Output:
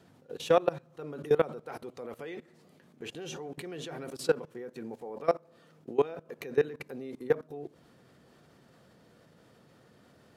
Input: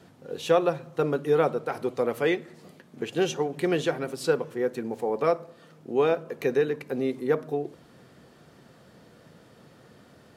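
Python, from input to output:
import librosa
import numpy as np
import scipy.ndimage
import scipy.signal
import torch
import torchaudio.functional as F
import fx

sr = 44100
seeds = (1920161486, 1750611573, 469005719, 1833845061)

y = fx.level_steps(x, sr, step_db=20)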